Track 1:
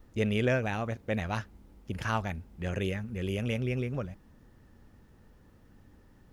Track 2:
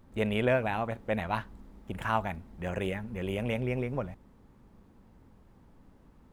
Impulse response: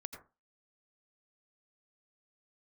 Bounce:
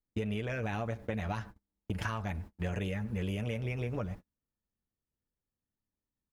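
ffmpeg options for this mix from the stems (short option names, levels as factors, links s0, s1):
-filter_complex "[0:a]alimiter=limit=0.0668:level=0:latency=1:release=219,volume=1.26,asplit=2[s0][s1];[s1]volume=0.0891[s2];[1:a]acrossover=split=150[s3][s4];[s4]acompressor=threshold=0.0251:ratio=6[s5];[s3][s5]amix=inputs=2:normalize=0,adelay=7.1,volume=0.75,asplit=2[s6][s7];[s7]volume=0.355[s8];[2:a]atrim=start_sample=2205[s9];[s2][s8]amix=inputs=2:normalize=0[s10];[s10][s9]afir=irnorm=-1:irlink=0[s11];[s0][s6][s11]amix=inputs=3:normalize=0,agate=range=0.0112:threshold=0.00891:ratio=16:detection=peak,acompressor=threshold=0.0282:ratio=6"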